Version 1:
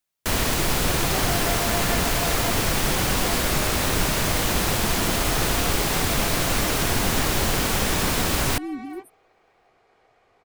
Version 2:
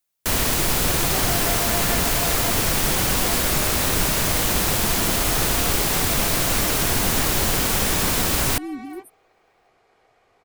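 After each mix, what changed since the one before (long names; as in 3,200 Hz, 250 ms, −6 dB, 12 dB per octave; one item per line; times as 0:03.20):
master: add high-shelf EQ 6,900 Hz +6.5 dB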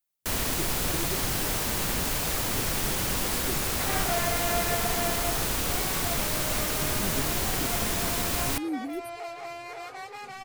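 first sound −7.5 dB
second sound: entry +2.80 s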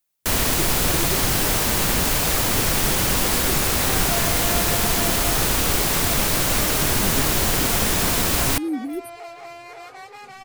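speech +6.0 dB
first sound +8.0 dB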